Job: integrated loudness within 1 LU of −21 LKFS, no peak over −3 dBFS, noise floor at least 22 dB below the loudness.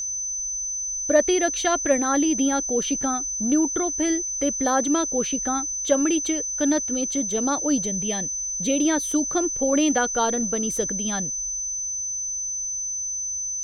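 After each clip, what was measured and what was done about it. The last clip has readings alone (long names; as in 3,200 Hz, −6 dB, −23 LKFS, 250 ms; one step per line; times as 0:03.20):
crackle rate 22 per second; interfering tone 6,100 Hz; level of the tone −26 dBFS; integrated loudness −22.5 LKFS; sample peak −6.5 dBFS; target loudness −21.0 LKFS
→ click removal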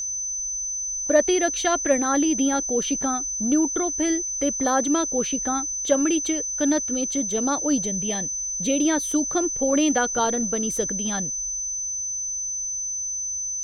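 crackle rate 0.44 per second; interfering tone 6,100 Hz; level of the tone −26 dBFS
→ notch filter 6,100 Hz, Q 30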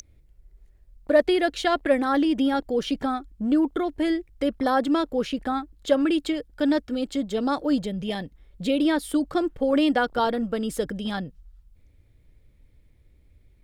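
interfering tone none found; integrated loudness −24.5 LKFS; sample peak −7.0 dBFS; target loudness −21.0 LKFS
→ level +3.5 dB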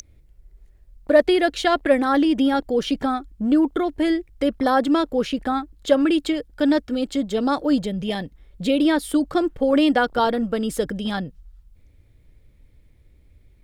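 integrated loudness −21.0 LKFS; sample peak −3.5 dBFS; background noise floor −54 dBFS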